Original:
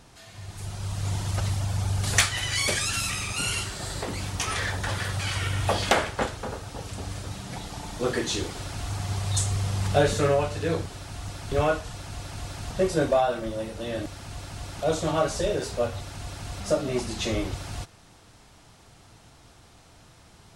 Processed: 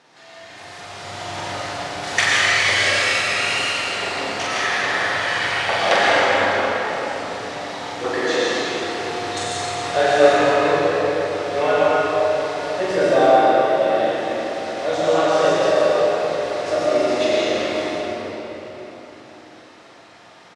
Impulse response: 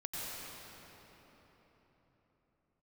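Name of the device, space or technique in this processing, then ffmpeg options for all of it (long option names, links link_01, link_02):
station announcement: -filter_complex "[0:a]highpass=360,lowpass=4900,equalizer=frequency=1900:width_type=o:width=0.33:gain=5,aecho=1:1:43.73|163.3:0.708|0.316[link_01];[1:a]atrim=start_sample=2205[link_02];[link_01][link_02]afir=irnorm=-1:irlink=0,volume=6dB"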